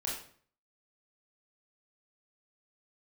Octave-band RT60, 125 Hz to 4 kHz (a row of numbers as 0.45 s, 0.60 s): 0.70 s, 0.60 s, 0.55 s, 0.50 s, 0.45 s, 0.40 s